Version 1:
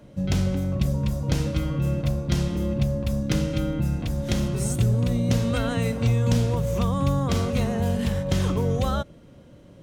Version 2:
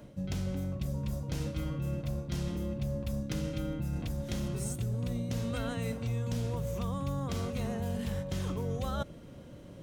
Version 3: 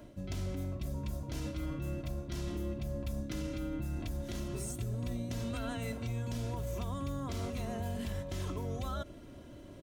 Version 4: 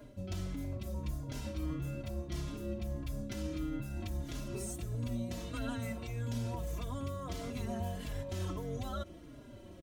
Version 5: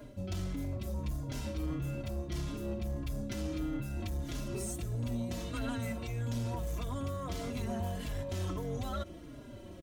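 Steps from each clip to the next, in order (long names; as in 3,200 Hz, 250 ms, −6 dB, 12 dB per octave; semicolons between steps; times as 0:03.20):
high-shelf EQ 11,000 Hz +5.5 dB; reversed playback; downward compressor 5 to 1, threshold −32 dBFS, peak gain reduction 14 dB; reversed playback
comb filter 3 ms, depth 57%; brickwall limiter −27 dBFS, peak gain reduction 7.5 dB; level −1.5 dB
barber-pole flanger 4.4 ms −1.6 Hz; level +2 dB
soft clipping −31.5 dBFS, distortion −19 dB; level +3.5 dB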